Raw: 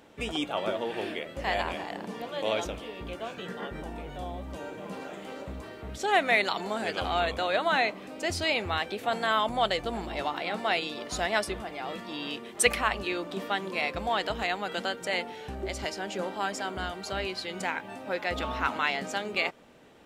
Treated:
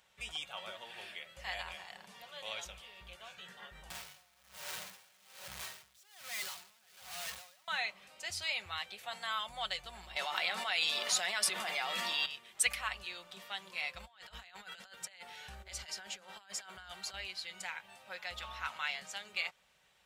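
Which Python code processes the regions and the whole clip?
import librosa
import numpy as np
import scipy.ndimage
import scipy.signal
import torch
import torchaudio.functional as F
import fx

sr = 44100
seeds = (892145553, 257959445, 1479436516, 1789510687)

y = fx.chain(x, sr, fx.clip_1bit(),
    fx.highpass(hz=87.0, slope=24),
    fx.tremolo_db(hz=1.2, depth_db=26), at=(3.9, 7.68))
y = fx.chain(y, sr, fx.highpass(hz=200.0, slope=24),
    fx.env_flatten(amount_pct=100), at=(10.16, 12.26))
y = fx.chain(y, sr, fx.peak_eq(hz=1500.0, db=4.0, octaves=0.33),
    fx.over_compress(threshold_db=-36.0, ratio=-0.5), at=(14.0, 17.14))
y = scipy.signal.sosfilt(scipy.signal.butter(2, 42.0, 'highpass', fs=sr, output='sos'), y)
y = fx.tone_stack(y, sr, knobs='10-0-10')
y = y + 0.39 * np.pad(y, (int(5.4 * sr / 1000.0), 0))[:len(y)]
y = y * 10.0 ** (-4.5 / 20.0)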